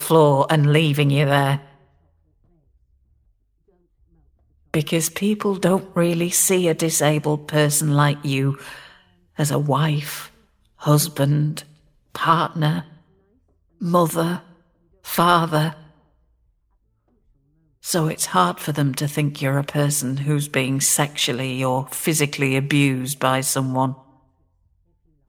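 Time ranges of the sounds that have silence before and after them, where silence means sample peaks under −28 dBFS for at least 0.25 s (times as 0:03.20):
0:04.74–0:08.73
0:09.39–0:10.25
0:10.83–0:11.60
0:12.15–0:12.81
0:13.81–0:14.38
0:15.08–0:15.71
0:17.85–0:23.93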